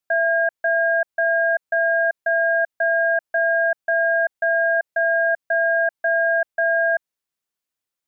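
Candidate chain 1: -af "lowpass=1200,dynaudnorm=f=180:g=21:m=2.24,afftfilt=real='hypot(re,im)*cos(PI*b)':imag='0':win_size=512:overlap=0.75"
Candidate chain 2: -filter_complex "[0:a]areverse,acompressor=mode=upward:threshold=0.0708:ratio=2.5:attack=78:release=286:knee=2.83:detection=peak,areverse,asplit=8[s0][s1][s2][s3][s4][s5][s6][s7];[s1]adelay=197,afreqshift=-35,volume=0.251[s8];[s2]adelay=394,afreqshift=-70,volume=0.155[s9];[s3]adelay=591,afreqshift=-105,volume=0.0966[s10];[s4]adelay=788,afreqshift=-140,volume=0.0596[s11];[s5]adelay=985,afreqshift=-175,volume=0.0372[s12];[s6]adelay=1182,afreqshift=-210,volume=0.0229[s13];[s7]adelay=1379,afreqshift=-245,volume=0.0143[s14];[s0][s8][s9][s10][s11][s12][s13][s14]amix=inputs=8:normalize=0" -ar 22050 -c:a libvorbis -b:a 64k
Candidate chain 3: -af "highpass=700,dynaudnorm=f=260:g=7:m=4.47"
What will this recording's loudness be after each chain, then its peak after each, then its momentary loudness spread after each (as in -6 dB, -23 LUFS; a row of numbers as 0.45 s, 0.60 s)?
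-19.0 LUFS, -19.0 LUFS, -9.5 LUFS; -10.5 dBFS, -1.0 dBFS, -3.0 dBFS; 8 LU, 2 LU, 6 LU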